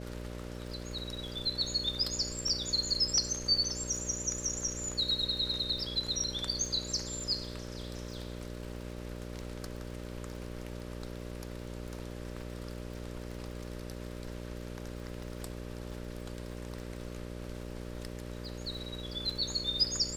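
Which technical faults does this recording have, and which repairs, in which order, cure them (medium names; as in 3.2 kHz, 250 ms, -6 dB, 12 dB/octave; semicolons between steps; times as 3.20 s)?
buzz 60 Hz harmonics 10 -42 dBFS
crackle 43 per s -43 dBFS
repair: de-click; de-hum 60 Hz, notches 10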